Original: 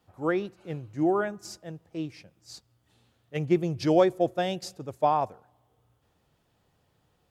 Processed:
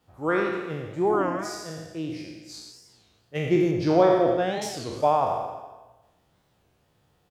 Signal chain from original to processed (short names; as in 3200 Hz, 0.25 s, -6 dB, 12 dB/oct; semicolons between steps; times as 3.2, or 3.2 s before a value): spectral trails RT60 1.15 s; 3.71–4.63 LPF 2200 Hz 6 dB/oct; feedback echo 88 ms, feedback 52%, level -10 dB; record warp 33 1/3 rpm, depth 250 cents